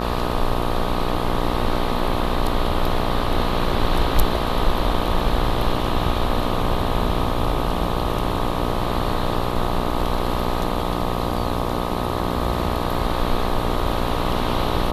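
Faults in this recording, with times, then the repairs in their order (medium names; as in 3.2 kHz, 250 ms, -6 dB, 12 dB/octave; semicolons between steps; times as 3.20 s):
buzz 60 Hz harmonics 21 -25 dBFS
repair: de-hum 60 Hz, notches 21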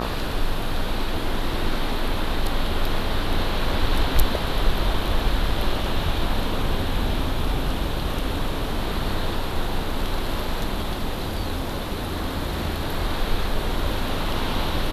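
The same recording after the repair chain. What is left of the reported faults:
nothing left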